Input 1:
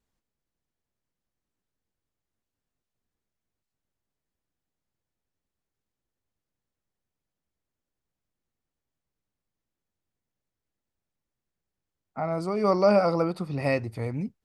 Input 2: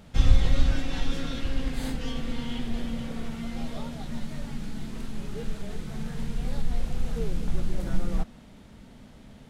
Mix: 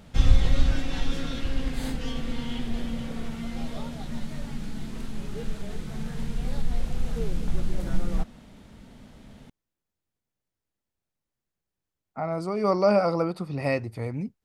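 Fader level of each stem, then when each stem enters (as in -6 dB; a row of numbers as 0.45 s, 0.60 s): -0.5 dB, +0.5 dB; 0.00 s, 0.00 s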